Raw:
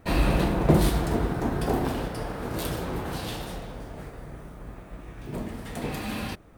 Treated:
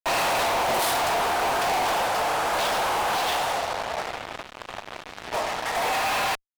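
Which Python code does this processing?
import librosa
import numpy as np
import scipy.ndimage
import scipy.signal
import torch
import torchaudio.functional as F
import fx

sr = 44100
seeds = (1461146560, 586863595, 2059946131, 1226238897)

y = fx.env_lowpass(x, sr, base_hz=2200.0, full_db=-17.5)
y = fx.ladder_highpass(y, sr, hz=620.0, resonance_pct=40)
y = fx.fuzz(y, sr, gain_db=54.0, gate_db=-53.0)
y = y * librosa.db_to_amplitude(-9.0)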